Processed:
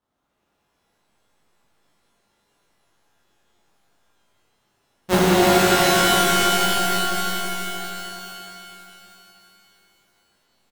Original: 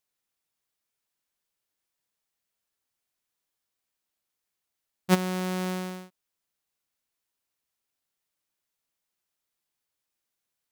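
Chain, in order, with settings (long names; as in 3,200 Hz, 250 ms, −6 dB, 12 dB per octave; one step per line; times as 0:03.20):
repeating echo 321 ms, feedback 57%, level −4.5 dB
sample-rate reduction 2,300 Hz, jitter 20%
reverb with rising layers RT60 3.1 s, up +12 semitones, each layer −2 dB, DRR −10 dB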